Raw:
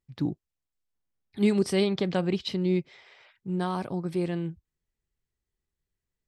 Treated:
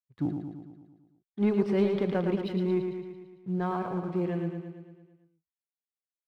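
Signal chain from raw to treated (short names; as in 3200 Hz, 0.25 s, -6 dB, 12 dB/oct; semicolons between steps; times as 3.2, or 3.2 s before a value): spectral noise reduction 7 dB; expander -46 dBFS; LPF 1900 Hz 12 dB/oct; sample leveller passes 1; feedback echo 0.112 s, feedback 59%, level -6 dB; gain -4 dB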